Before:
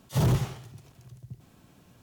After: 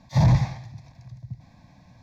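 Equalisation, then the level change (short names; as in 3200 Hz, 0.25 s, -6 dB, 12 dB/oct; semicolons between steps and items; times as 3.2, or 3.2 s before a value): air absorption 84 m; fixed phaser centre 2000 Hz, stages 8; +7.5 dB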